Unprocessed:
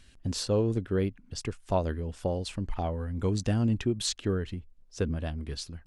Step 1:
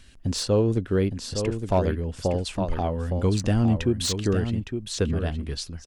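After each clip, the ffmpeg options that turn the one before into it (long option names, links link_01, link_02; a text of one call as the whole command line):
ffmpeg -i in.wav -filter_complex "[0:a]aecho=1:1:862:0.422,acrossover=split=710[link_01][link_02];[link_02]volume=26.5dB,asoftclip=hard,volume=-26.5dB[link_03];[link_01][link_03]amix=inputs=2:normalize=0,volume=5dB" out.wav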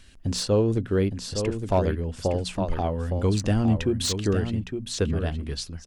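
ffmpeg -i in.wav -af "bandreject=frequency=60:width_type=h:width=6,bandreject=frequency=120:width_type=h:width=6,bandreject=frequency=180:width_type=h:width=6,bandreject=frequency=240:width_type=h:width=6" out.wav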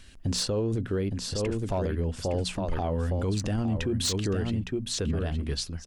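ffmpeg -i in.wav -af "alimiter=limit=-21.5dB:level=0:latency=1:release=37,volume=1dB" out.wav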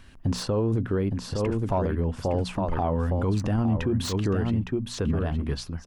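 ffmpeg -i in.wav -af "equalizer=frequency=125:width_type=o:width=1:gain=4,equalizer=frequency=250:width_type=o:width=1:gain=3,equalizer=frequency=1000:width_type=o:width=1:gain=8,equalizer=frequency=4000:width_type=o:width=1:gain=-4,equalizer=frequency=8000:width_type=o:width=1:gain=-7" out.wav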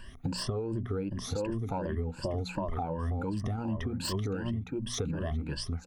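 ffmpeg -i in.wav -af "afftfilt=real='re*pow(10,17/40*sin(2*PI*(1.3*log(max(b,1)*sr/1024/100)/log(2)-(2.7)*(pts-256)/sr)))':imag='im*pow(10,17/40*sin(2*PI*(1.3*log(max(b,1)*sr/1024/100)/log(2)-(2.7)*(pts-256)/sr)))':win_size=1024:overlap=0.75,acompressor=threshold=-28dB:ratio=10,volume=-1.5dB" out.wav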